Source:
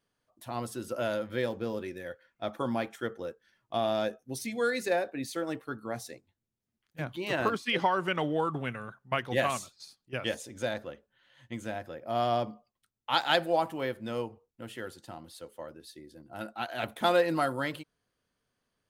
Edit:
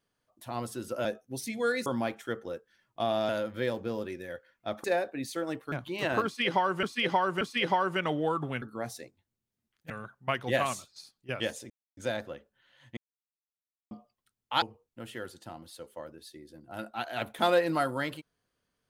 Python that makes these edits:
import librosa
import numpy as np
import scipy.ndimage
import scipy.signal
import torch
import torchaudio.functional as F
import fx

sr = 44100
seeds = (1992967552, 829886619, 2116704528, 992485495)

y = fx.edit(x, sr, fx.swap(start_s=1.05, length_s=1.55, other_s=4.03, other_length_s=0.81),
    fx.move(start_s=5.72, length_s=1.28, to_s=8.74),
    fx.repeat(start_s=7.53, length_s=0.58, count=3),
    fx.insert_silence(at_s=10.54, length_s=0.27),
    fx.silence(start_s=11.54, length_s=0.94),
    fx.cut(start_s=13.19, length_s=1.05), tone=tone)